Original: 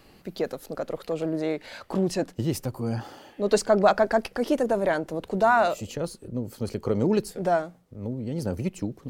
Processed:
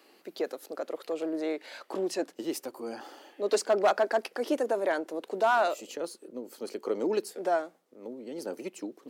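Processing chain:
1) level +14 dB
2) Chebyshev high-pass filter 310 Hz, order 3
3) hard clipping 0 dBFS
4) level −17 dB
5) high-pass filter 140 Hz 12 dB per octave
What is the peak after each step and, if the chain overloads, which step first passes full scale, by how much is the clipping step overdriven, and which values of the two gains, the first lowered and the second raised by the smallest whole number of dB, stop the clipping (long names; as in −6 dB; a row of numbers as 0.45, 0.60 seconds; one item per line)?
+7.0, +5.5, 0.0, −17.0, −14.5 dBFS
step 1, 5.5 dB
step 1 +8 dB, step 4 −11 dB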